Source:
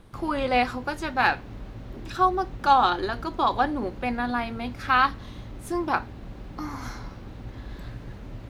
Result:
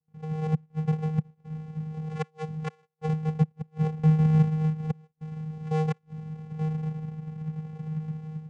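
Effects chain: decimation with a swept rate 34×, swing 100% 0.31 Hz; flipped gate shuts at -16 dBFS, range -38 dB; vocoder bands 4, square 156 Hz; dynamic EQ 150 Hz, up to +4 dB, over -42 dBFS, Q 2.2; gate -52 dBFS, range -23 dB; AGC gain up to 10.5 dB; gain -7.5 dB

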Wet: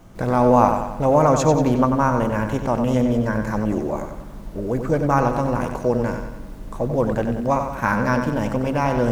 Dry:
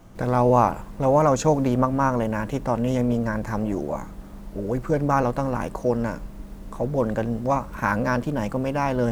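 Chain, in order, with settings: analogue delay 93 ms, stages 4096, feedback 51%, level -7 dB; gain +2 dB

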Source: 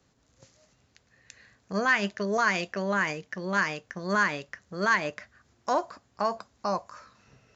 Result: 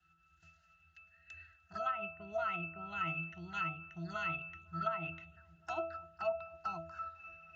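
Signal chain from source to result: EQ curve 130 Hz 0 dB, 190 Hz -19 dB, 310 Hz -16 dB, 490 Hz -22 dB, 1600 Hz +14 dB; envelope flanger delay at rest 5.8 ms, full sweep at -26.5 dBFS; bell 780 Hz +7.5 dB 0.31 oct; octave resonator E, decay 0.46 s; on a send: darkening echo 0.253 s, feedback 81%, low-pass 970 Hz, level -23.5 dB; on the sum: treble ducked by the level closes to 1000 Hz, closed at -46.5 dBFS; gain +18 dB

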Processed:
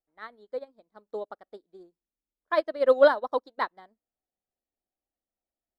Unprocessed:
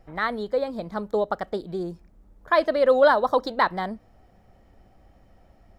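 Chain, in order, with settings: resonant low shelf 210 Hz -8.5 dB, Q 1.5; upward expander 2.5:1, over -37 dBFS

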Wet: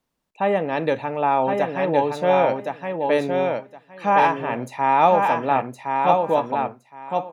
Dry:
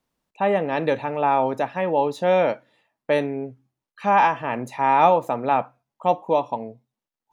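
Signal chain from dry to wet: feedback echo 1.066 s, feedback 17%, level -4 dB

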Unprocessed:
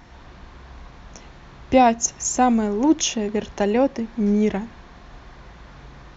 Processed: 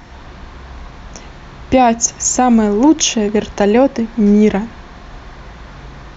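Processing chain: maximiser +10 dB; gain -1 dB

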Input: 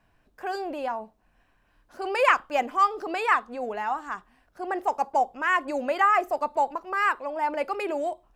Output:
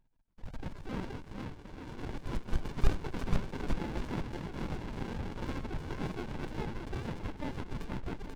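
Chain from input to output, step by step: sine-wave speech; steep high-pass 610 Hz 36 dB/oct; bell 1100 Hz +14.5 dB 2.5 oct; reverse; compressor 16:1, threshold -19 dBFS, peak gain reduction 24 dB; reverse; fixed phaser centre 1900 Hz, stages 6; level quantiser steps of 18 dB; on a send: bouncing-ball echo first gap 0.49 s, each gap 0.75×, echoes 5; on the sum: echoes that change speed 0.28 s, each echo +4 st, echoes 3, each echo -6 dB; running maximum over 65 samples; gain +4.5 dB

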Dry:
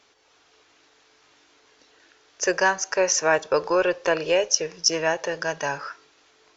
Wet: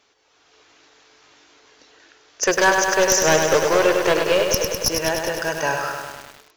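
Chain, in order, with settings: one-sided fold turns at -16 dBFS; AGC gain up to 7 dB; lo-fi delay 0.101 s, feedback 80%, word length 6-bit, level -5 dB; gain -1.5 dB

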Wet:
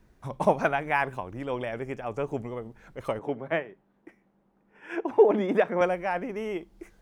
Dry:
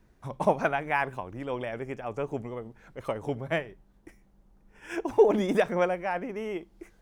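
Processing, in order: 3.19–5.81 three-band isolator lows -24 dB, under 160 Hz, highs -16 dB, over 3000 Hz; gain +1.5 dB

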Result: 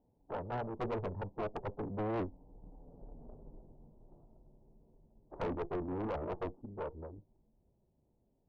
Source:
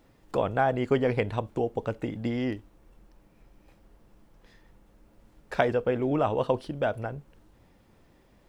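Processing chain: sample sorter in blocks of 16 samples; Doppler pass-by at 3.18, 42 m/s, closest 16 m; formant-preserving pitch shift -4 st; added harmonics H 6 -8 dB, 8 -20 dB, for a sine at -22.5 dBFS; Chebyshev low-pass 930 Hz, order 5; tube stage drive 45 dB, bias 0.8; gain +13.5 dB

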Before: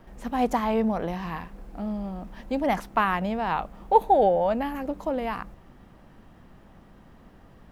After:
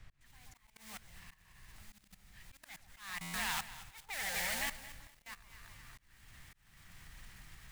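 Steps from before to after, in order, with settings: opening faded in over 1.20 s; in parallel at +1.5 dB: compressor 16:1, threshold -36 dBFS, peak gain reduction 25 dB; on the sum: modulation noise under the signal 14 dB; soft clip -21.5 dBFS, distortion -8 dB; passive tone stack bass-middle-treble 5-5-5; on a send: echo with dull and thin repeats by turns 0.127 s, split 1000 Hz, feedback 64%, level -3 dB; on the sum: level quantiser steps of 21 dB; added noise brown -58 dBFS; graphic EQ 125/250/500/2000/4000/8000 Hz +4/-7/-8/+11/+4/+4 dB; auto swell 0.452 s; stuck buffer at 3.21, samples 512, times 10; lo-fi delay 0.224 s, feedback 35%, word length 9-bit, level -14.5 dB; gain +3 dB

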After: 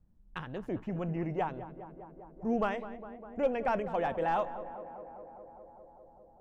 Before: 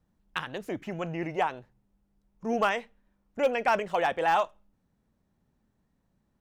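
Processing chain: tilt -3.5 dB/oct; tape echo 0.202 s, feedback 89%, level -12 dB, low-pass 1600 Hz; gain -7 dB

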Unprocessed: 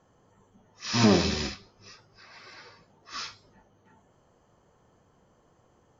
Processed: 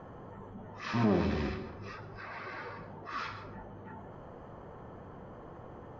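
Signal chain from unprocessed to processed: LPF 1700 Hz 12 dB/oct; plate-style reverb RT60 0.59 s, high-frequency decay 0.55×, pre-delay 0.11 s, DRR 16.5 dB; fast leveller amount 50%; gain -8 dB

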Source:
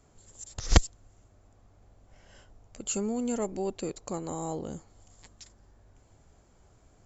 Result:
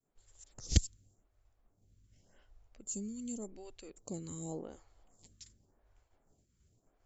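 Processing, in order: expander -54 dBFS; bell 810 Hz -9 dB 2.8 oct, from 2.77 s -15 dB, from 4.05 s -3.5 dB; photocell phaser 0.88 Hz; gain -3 dB

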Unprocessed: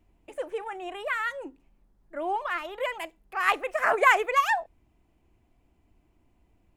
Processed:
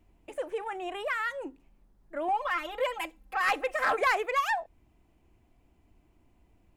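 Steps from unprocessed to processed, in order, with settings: 2.28–4.01 comb 3.8 ms, depth 93%; in parallel at +0.5 dB: compressor, threshold -32 dBFS, peak gain reduction 16.5 dB; on the sum: soft clip -13.5 dBFS, distortion -16 dB; gain -5 dB

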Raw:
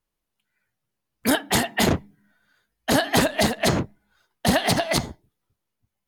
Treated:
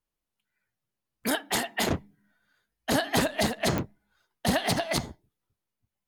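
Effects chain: 1.28–1.9 bell 86 Hz -11 dB 2.5 oct; pops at 3.78, -9 dBFS; gain -5.5 dB

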